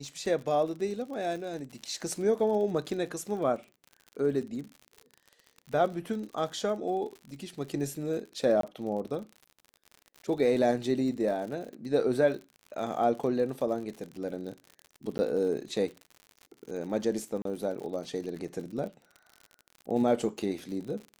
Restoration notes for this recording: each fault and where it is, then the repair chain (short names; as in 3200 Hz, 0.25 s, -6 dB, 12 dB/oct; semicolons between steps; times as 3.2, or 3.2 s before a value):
crackle 59/s -38 dBFS
8.61–8.63 gap 23 ms
15.18–15.19 gap 10 ms
17.42–17.45 gap 33 ms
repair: de-click; interpolate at 8.61, 23 ms; interpolate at 15.18, 10 ms; interpolate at 17.42, 33 ms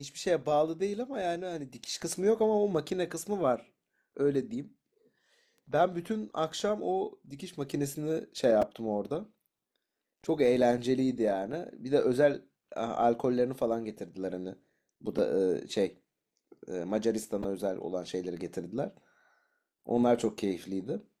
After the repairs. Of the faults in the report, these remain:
none